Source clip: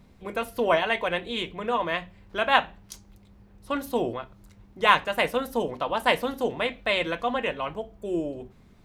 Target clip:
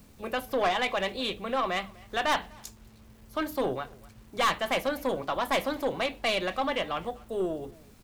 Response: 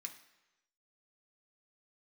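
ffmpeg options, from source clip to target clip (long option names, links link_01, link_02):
-filter_complex "[0:a]acrossover=split=380|6000[link_01][link_02][link_03];[link_03]acompressor=mode=upward:threshold=-59dB:ratio=2.5[link_04];[link_01][link_02][link_04]amix=inputs=3:normalize=0,asetrate=48510,aresample=44100,acrusher=bits=9:mix=0:aa=0.000001,aeval=exprs='(tanh(10*val(0)+0.2)-tanh(0.2))/10':channel_layout=same,asplit=2[link_05][link_06];[link_06]adelay=250,highpass=300,lowpass=3400,asoftclip=type=hard:threshold=-28.5dB,volume=-21dB[link_07];[link_05][link_07]amix=inputs=2:normalize=0"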